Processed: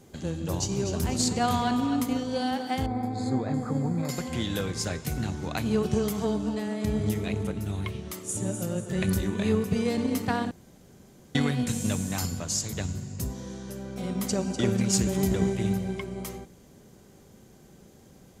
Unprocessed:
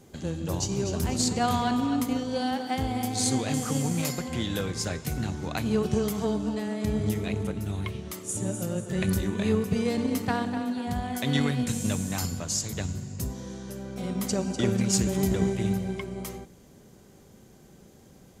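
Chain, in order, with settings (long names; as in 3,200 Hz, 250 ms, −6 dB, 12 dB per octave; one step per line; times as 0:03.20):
0:02.86–0:04.09: moving average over 15 samples
0:10.51–0:11.35: fill with room tone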